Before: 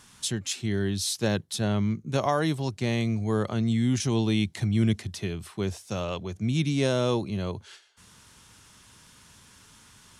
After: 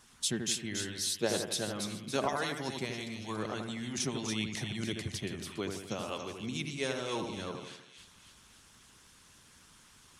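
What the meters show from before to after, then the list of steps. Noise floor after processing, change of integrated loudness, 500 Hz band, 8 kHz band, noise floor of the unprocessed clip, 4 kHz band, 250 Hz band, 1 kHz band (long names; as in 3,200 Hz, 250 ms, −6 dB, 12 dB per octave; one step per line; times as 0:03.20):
−60 dBFS, −8.0 dB, −7.0 dB, −1.0 dB, −55 dBFS, −2.5 dB, −11.0 dB, −5.5 dB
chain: harmonic and percussive parts rebalanced harmonic −17 dB
echo with a time of its own for lows and highs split 2,300 Hz, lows 83 ms, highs 282 ms, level −5 dB
level −1.5 dB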